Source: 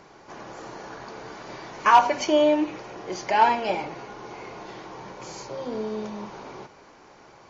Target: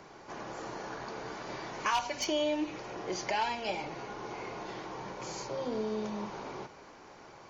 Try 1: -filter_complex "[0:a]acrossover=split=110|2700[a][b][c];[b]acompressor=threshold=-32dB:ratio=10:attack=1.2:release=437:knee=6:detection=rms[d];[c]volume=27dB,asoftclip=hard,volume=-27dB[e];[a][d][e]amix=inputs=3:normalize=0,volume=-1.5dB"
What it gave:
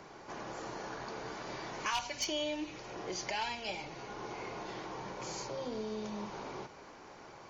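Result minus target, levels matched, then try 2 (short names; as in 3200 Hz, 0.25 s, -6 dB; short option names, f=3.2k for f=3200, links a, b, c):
compressor: peak gain reduction +7 dB
-filter_complex "[0:a]acrossover=split=110|2700[a][b][c];[b]acompressor=threshold=-24.5dB:ratio=10:attack=1.2:release=437:knee=6:detection=rms[d];[c]volume=27dB,asoftclip=hard,volume=-27dB[e];[a][d][e]amix=inputs=3:normalize=0,volume=-1.5dB"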